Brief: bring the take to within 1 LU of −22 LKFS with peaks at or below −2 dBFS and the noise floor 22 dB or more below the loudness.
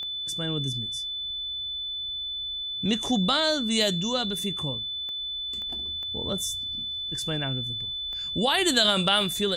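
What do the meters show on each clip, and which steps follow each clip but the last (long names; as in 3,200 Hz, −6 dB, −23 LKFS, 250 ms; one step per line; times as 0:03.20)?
number of clicks 5; interfering tone 3,500 Hz; level of the tone −30 dBFS; integrated loudness −26.0 LKFS; sample peak −7.5 dBFS; target loudness −22.0 LKFS
→ click removal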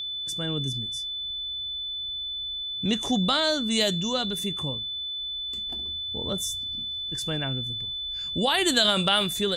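number of clicks 0; interfering tone 3,500 Hz; level of the tone −30 dBFS
→ notch filter 3,500 Hz, Q 30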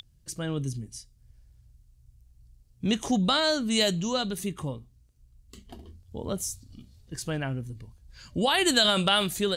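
interfering tone none found; integrated loudness −26.5 LKFS; sample peak −8.0 dBFS; target loudness −22.0 LKFS
→ level +4.5 dB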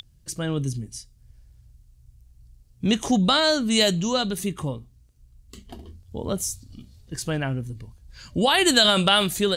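integrated loudness −22.0 LKFS; sample peak −3.5 dBFS; background noise floor −57 dBFS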